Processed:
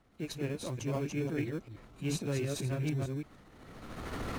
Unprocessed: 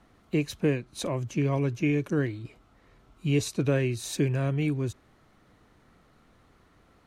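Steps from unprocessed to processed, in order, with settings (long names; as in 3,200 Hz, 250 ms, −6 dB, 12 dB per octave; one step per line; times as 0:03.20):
delay that plays each chunk backwards 259 ms, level −3.5 dB
camcorder AGC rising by 18 dB per second
in parallel at −11.5 dB: decimation without filtering 23×
on the sum: transient designer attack −9 dB, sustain +5 dB
time stretch by overlap-add 0.62×, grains 148 ms
level −8.5 dB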